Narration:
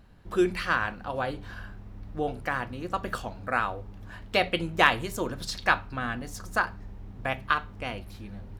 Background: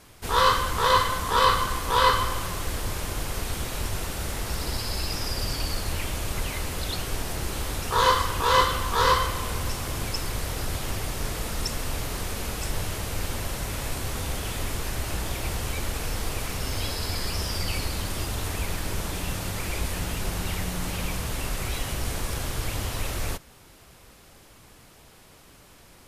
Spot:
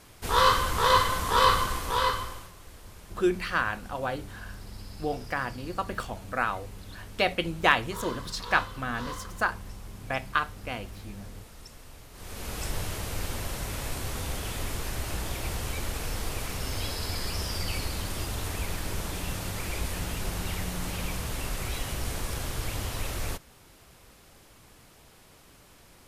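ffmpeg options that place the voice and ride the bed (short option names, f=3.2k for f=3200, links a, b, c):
-filter_complex "[0:a]adelay=2850,volume=-1dB[a];[1:a]volume=14.5dB,afade=t=out:st=1.55:d=0.97:silence=0.133352,afade=t=in:st=12.13:d=0.47:silence=0.16788[b];[a][b]amix=inputs=2:normalize=0"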